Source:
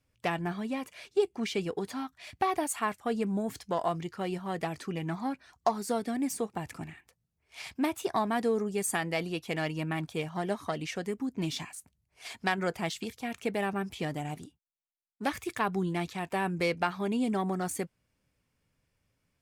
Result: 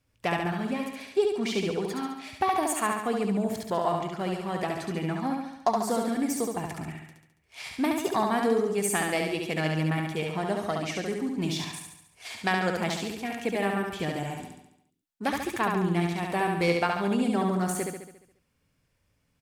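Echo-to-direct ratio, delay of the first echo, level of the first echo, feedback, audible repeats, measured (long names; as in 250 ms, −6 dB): −2.0 dB, 70 ms, −3.5 dB, 55%, 7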